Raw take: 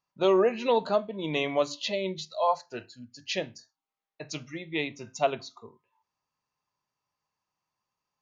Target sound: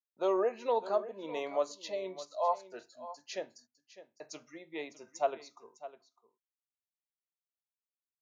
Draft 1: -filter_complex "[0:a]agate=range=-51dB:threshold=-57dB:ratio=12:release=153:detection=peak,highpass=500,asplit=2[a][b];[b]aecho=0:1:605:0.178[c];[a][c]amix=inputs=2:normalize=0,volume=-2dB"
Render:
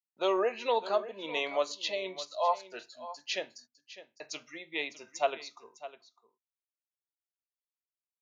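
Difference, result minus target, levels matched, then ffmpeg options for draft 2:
4000 Hz band +9.5 dB
-filter_complex "[0:a]agate=range=-51dB:threshold=-57dB:ratio=12:release=153:detection=peak,highpass=500,equalizer=f=3k:w=0.77:g=-13.5,asplit=2[a][b];[b]aecho=0:1:605:0.178[c];[a][c]amix=inputs=2:normalize=0,volume=-2dB"

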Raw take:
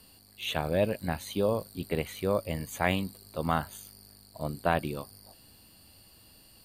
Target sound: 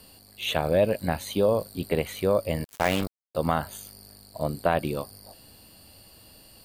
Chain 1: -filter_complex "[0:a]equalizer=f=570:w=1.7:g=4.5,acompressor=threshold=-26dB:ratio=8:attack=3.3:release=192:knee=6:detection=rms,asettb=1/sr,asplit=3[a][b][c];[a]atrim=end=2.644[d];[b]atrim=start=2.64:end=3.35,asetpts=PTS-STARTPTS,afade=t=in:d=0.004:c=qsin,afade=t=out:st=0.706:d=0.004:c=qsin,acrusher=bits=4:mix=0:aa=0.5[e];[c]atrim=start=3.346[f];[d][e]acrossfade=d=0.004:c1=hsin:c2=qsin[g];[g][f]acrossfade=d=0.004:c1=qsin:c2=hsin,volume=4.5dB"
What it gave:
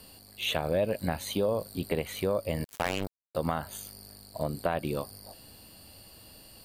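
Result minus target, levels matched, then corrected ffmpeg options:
compressor: peak gain reduction +7 dB
-filter_complex "[0:a]equalizer=f=570:w=1.7:g=4.5,acompressor=threshold=-18dB:ratio=8:attack=3.3:release=192:knee=6:detection=rms,asettb=1/sr,asplit=3[a][b][c];[a]atrim=end=2.644[d];[b]atrim=start=2.64:end=3.35,asetpts=PTS-STARTPTS,afade=t=in:d=0.004:c=qsin,afade=t=out:st=0.706:d=0.004:c=qsin,acrusher=bits=4:mix=0:aa=0.5[e];[c]atrim=start=3.346[f];[d][e]acrossfade=d=0.004:c1=hsin:c2=qsin[g];[g][f]acrossfade=d=0.004:c1=qsin:c2=hsin,volume=4.5dB"

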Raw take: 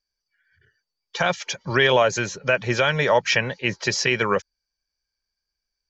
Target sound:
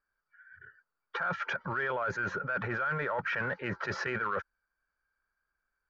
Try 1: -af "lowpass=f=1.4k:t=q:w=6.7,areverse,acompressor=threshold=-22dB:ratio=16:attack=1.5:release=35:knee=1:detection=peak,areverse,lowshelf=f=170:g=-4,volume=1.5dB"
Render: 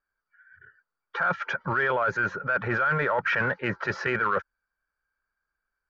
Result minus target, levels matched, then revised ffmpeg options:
compressor: peak gain reduction -7.5 dB
-af "lowpass=f=1.4k:t=q:w=6.7,areverse,acompressor=threshold=-30dB:ratio=16:attack=1.5:release=35:knee=1:detection=peak,areverse,lowshelf=f=170:g=-4,volume=1.5dB"

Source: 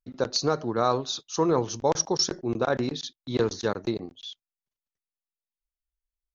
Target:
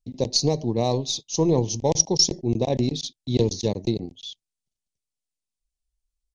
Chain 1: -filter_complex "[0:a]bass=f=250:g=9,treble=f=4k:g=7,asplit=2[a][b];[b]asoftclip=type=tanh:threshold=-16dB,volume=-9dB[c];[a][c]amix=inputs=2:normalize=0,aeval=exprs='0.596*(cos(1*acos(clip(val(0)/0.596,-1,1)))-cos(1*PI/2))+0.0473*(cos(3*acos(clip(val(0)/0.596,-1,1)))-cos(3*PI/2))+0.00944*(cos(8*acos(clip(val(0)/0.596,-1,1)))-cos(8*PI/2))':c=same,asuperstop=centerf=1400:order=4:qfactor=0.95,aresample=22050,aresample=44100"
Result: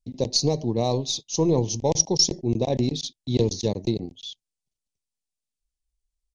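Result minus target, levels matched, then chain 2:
soft clip: distortion +16 dB
-filter_complex "[0:a]bass=f=250:g=9,treble=f=4k:g=7,asplit=2[a][b];[b]asoftclip=type=tanh:threshold=-5dB,volume=-9dB[c];[a][c]amix=inputs=2:normalize=0,aeval=exprs='0.596*(cos(1*acos(clip(val(0)/0.596,-1,1)))-cos(1*PI/2))+0.0473*(cos(3*acos(clip(val(0)/0.596,-1,1)))-cos(3*PI/2))+0.00944*(cos(8*acos(clip(val(0)/0.596,-1,1)))-cos(8*PI/2))':c=same,asuperstop=centerf=1400:order=4:qfactor=0.95,aresample=22050,aresample=44100"

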